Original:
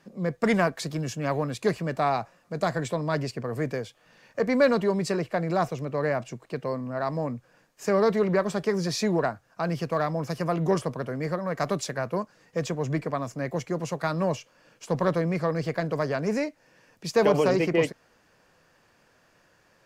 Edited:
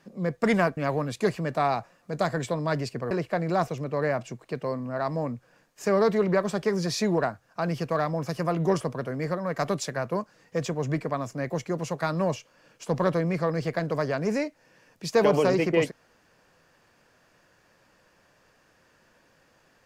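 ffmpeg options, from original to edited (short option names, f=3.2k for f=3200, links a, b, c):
-filter_complex "[0:a]asplit=3[a][b][c];[a]atrim=end=0.772[d];[b]atrim=start=1.188:end=3.532[e];[c]atrim=start=5.118[f];[d][e]acrossfade=d=0.004:c1=hsin:c2=hsin[g];[g][f]acrossfade=d=0.004:c1=hsin:c2=hsin"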